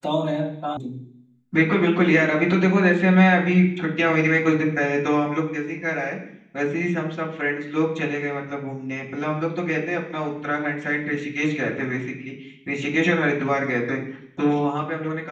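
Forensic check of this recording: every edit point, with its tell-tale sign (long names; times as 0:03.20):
0:00.77: cut off before it has died away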